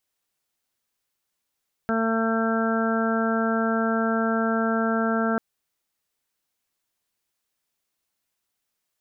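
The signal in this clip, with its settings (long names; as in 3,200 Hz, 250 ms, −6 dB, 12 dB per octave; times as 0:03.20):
steady harmonic partials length 3.49 s, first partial 225 Hz, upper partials −5/−4.5/−12/−18/−5/−7.5 dB, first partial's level −23.5 dB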